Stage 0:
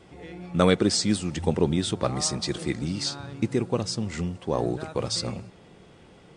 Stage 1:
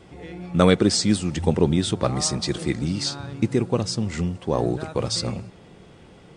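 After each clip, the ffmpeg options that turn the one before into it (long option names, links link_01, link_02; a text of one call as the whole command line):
ffmpeg -i in.wav -af "lowshelf=frequency=220:gain=3,volume=2.5dB" out.wav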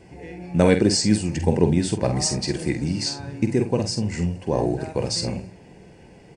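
ffmpeg -i in.wav -af "superequalizer=10b=0.282:13b=0.316,aecho=1:1:47|68:0.398|0.133" out.wav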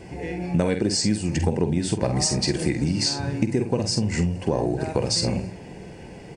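ffmpeg -i in.wav -af "acompressor=threshold=-26dB:ratio=6,volume=7dB" out.wav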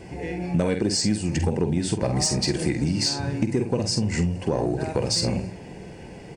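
ffmpeg -i in.wav -af "asoftclip=type=tanh:threshold=-9.5dB" out.wav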